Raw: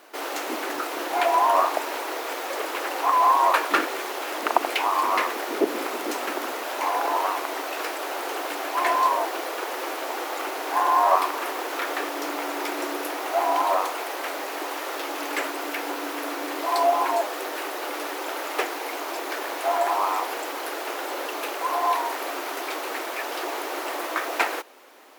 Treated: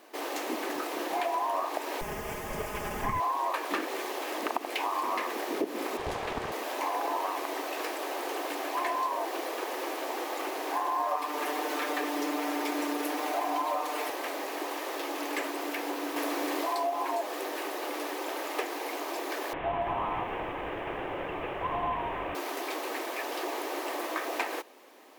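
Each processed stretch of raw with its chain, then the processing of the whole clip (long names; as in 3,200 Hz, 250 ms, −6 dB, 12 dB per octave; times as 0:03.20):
0:02.01–0:03.20: lower of the sound and its delayed copy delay 4.8 ms + parametric band 4,000 Hz −12.5 dB 0.45 octaves
0:05.97–0:06.52: high-shelf EQ 6,300 Hz −11.5 dB + frequency shifter +69 Hz + highs frequency-modulated by the lows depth 0.67 ms
0:10.99–0:14.10: comb filter 6.7 ms, depth 93% + upward compression, threshold −23 dBFS
0:16.16–0:16.75: bass and treble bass −3 dB, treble +1 dB + envelope flattener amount 50%
0:19.53–0:22.35: variable-slope delta modulation 16 kbit/s + feedback echo at a low word length 283 ms, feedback 35%, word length 8 bits, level −13.5 dB
whole clip: low-shelf EQ 240 Hz +11 dB; notch filter 1,400 Hz, Q 8.5; downward compressor 6 to 1, threshold −22 dBFS; level −5 dB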